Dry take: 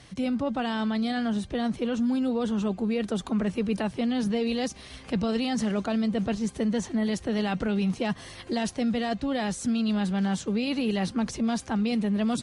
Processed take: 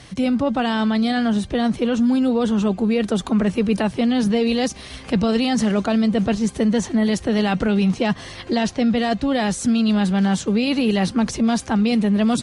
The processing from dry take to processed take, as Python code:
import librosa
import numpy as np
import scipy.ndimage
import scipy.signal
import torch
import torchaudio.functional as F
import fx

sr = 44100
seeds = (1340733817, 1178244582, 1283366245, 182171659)

y = fx.lowpass(x, sr, hz=fx.line((7.87, 8900.0), (8.96, 5400.0)), slope=12, at=(7.87, 8.96), fade=0.02)
y = y * 10.0 ** (8.0 / 20.0)